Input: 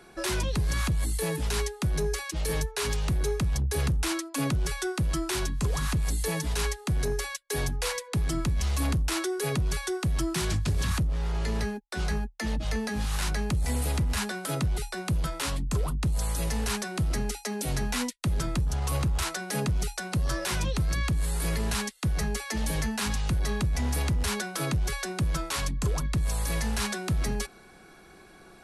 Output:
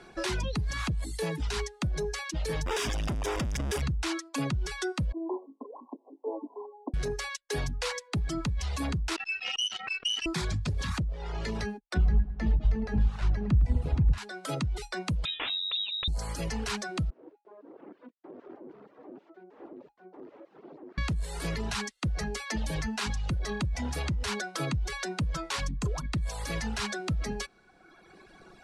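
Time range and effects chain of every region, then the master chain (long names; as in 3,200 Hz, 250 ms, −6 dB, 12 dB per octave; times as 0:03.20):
0:02.66–0:03.82: sign of each sample alone + Butterworth band-reject 4,200 Hz, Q 6.3 + high-shelf EQ 9,200 Hz +3.5 dB
0:05.12–0:06.94: spectral tilt −2 dB per octave + downward compressor 12 to 1, threshold −24 dBFS + linear-phase brick-wall band-pass 240–1,100 Hz
0:09.16–0:10.26: linear delta modulator 64 kbit/s, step −35.5 dBFS + voice inversion scrambler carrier 3,000 Hz + saturating transformer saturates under 3,700 Hz
0:11.94–0:14.18: RIAA equalisation playback + feedback echo with a low-pass in the loop 107 ms, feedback 66%, low-pass 2,900 Hz, level −6 dB
0:15.25–0:16.08: voice inversion scrambler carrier 3,800 Hz + downward compressor 2 to 1, threshold −28 dBFS
0:17.10–0:20.98: wrap-around overflow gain 28 dB + four-pole ladder band-pass 390 Hz, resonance 45%
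whole clip: reverb reduction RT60 1.4 s; low-pass filter 6,300 Hz 12 dB per octave; downward compressor 2 to 1, threshold −31 dBFS; level +1.5 dB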